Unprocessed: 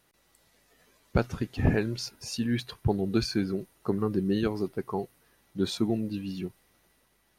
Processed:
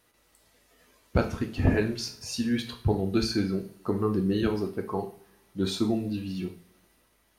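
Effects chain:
coupled-rooms reverb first 0.41 s, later 1.5 s, from −25 dB, DRR 2.5 dB

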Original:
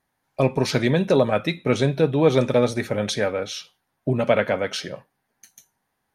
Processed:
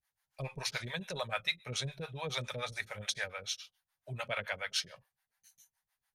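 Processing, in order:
two-band tremolo in antiphase 7 Hz, depth 100%, crossover 490 Hz
guitar amp tone stack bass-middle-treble 10-0-10

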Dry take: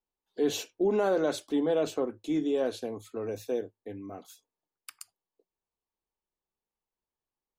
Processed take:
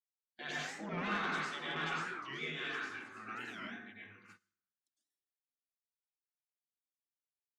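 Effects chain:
Chebyshev band-pass filter 350–3,100 Hz, order 2
gate on every frequency bin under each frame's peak −20 dB weak
dense smooth reverb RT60 0.93 s, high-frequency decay 0.5×, pre-delay 85 ms, DRR −6.5 dB
soft clipping −30.5 dBFS, distortion −18 dB
dynamic equaliser 1,300 Hz, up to +3 dB, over −54 dBFS, Q 0.94
noise gate −56 dBFS, range −23 dB
flat-topped bell 730 Hz −8.5 dB 1.2 octaves, from 0:02.07 −16 dB
wow of a warped record 45 rpm, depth 250 cents
level +2.5 dB

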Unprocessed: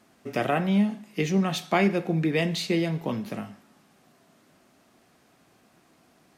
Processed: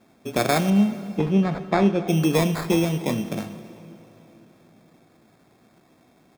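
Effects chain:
adaptive Wiener filter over 15 samples
high-shelf EQ 6,600 Hz −9.5 dB
decimation without filtering 15×
0:00.70–0:02.08: head-to-tape spacing loss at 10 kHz 27 dB
single-tap delay 265 ms −23 dB
convolution reverb RT60 3.7 s, pre-delay 57 ms, DRR 14 dB
level +4.5 dB

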